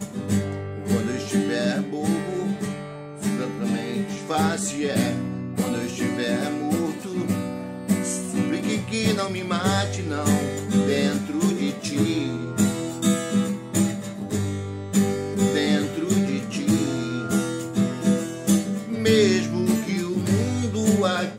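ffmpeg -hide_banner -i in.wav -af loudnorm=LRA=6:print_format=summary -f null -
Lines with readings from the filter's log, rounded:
Input Integrated:    -23.8 LUFS
Input True Peak:      -6.4 dBTP
Input LRA:             4.0 LU
Input Threshold:     -33.8 LUFS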